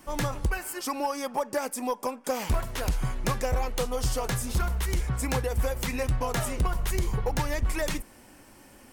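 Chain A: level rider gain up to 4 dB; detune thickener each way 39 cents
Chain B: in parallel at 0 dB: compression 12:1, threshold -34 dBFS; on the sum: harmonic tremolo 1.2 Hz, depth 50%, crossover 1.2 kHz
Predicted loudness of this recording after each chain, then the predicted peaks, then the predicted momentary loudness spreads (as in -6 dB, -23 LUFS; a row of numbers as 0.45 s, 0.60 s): -30.0 LUFS, -30.0 LUFS; -14.0 dBFS, -13.5 dBFS; 5 LU, 4 LU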